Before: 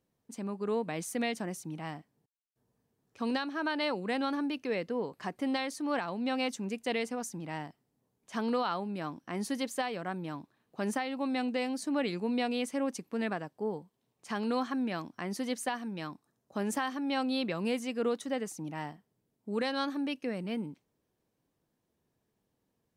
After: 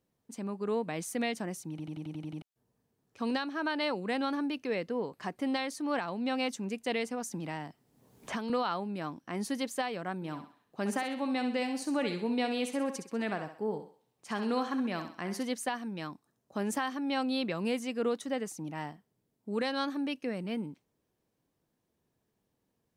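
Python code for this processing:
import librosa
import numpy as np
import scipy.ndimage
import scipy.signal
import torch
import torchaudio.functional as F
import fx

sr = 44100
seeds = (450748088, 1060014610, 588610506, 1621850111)

y = fx.band_squash(x, sr, depth_pct=100, at=(7.31, 8.5))
y = fx.echo_thinned(y, sr, ms=65, feedback_pct=43, hz=370.0, wet_db=-8, at=(10.15, 15.43))
y = fx.edit(y, sr, fx.stutter_over(start_s=1.7, slice_s=0.09, count=8), tone=tone)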